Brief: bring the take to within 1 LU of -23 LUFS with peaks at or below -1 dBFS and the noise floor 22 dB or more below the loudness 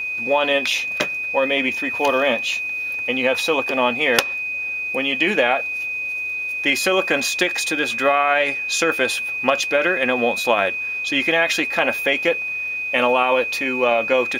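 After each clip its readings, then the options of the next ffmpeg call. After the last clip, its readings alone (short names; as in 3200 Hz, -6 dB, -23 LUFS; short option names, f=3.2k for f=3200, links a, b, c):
steady tone 2500 Hz; tone level -23 dBFS; loudness -19.0 LUFS; peak -1.5 dBFS; loudness target -23.0 LUFS
-> -af "bandreject=f=2.5k:w=30"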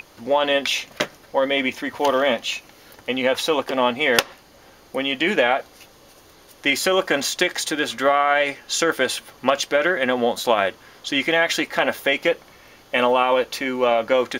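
steady tone none; loudness -21.0 LUFS; peak -2.0 dBFS; loudness target -23.0 LUFS
-> -af "volume=-2dB"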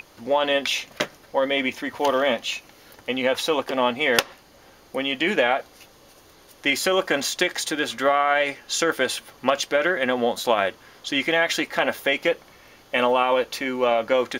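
loudness -23.0 LUFS; peak -4.0 dBFS; noise floor -52 dBFS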